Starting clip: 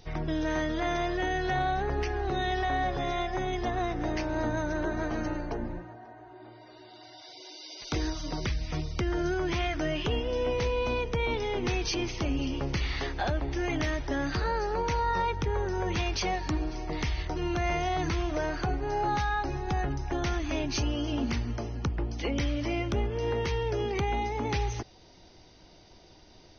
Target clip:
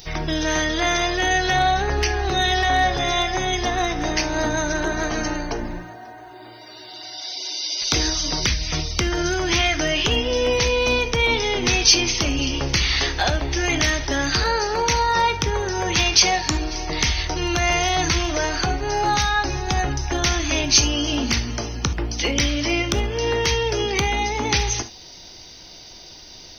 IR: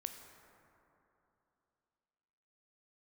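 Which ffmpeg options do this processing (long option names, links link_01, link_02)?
-filter_complex "[0:a]acontrast=81,crystalizer=i=6.5:c=0[link_01];[1:a]atrim=start_sample=2205,atrim=end_sample=3528[link_02];[link_01][link_02]afir=irnorm=-1:irlink=0,volume=2dB"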